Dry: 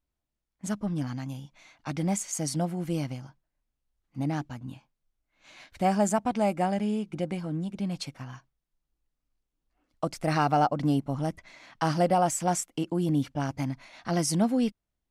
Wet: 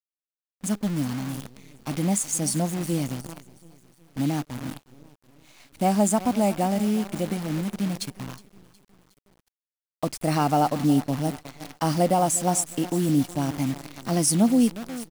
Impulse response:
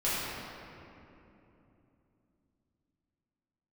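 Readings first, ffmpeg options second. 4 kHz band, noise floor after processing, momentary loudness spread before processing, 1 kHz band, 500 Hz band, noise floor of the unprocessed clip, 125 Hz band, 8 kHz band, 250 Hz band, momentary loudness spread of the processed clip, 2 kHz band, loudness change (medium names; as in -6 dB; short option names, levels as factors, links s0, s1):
+4.5 dB, under -85 dBFS, 15 LU, +1.5 dB, +2.5 dB, -85 dBFS, +3.0 dB, +7.5 dB, +5.0 dB, 14 LU, +0.5 dB, +4.0 dB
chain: -af "equalizer=f=250:t=o:w=0.67:g=5,equalizer=f=1600:t=o:w=0.67:g=-6,equalizer=f=10000:t=o:w=0.67:g=10,aecho=1:1:364|728|1092|1456:0.141|0.0692|0.0339|0.0166,acrusher=bits=7:dc=4:mix=0:aa=0.000001,volume=1.26"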